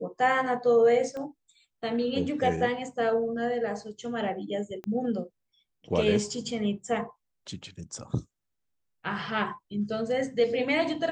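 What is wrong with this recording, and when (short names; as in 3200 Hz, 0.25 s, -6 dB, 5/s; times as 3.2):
1.17 pop -26 dBFS
4.84 pop -25 dBFS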